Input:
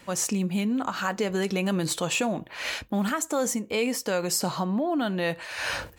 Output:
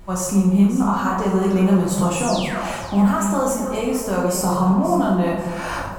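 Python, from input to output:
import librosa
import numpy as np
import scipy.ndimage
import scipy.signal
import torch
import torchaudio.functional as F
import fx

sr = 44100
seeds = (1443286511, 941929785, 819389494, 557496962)

p1 = fx.graphic_eq(x, sr, hz=(125, 1000, 2000, 4000), db=(7, 8, -7, -8))
p2 = fx.spec_paint(p1, sr, seeds[0], shape='fall', start_s=2.16, length_s=0.57, low_hz=500.0, high_hz=11000.0, level_db=-34.0)
p3 = fx.backlash(p2, sr, play_db=-40.5)
p4 = p2 + (p3 * librosa.db_to_amplitude(-3.0))
p5 = fx.dmg_noise_colour(p4, sr, seeds[1], colour='brown', level_db=-40.0)
p6 = p5 + fx.echo_alternate(p5, sr, ms=267, hz=1100.0, feedback_pct=55, wet_db=-8.0, dry=0)
p7 = fx.rev_plate(p6, sr, seeds[2], rt60_s=0.82, hf_ratio=0.7, predelay_ms=0, drr_db=-4.0)
y = p7 * librosa.db_to_amplitude(-5.5)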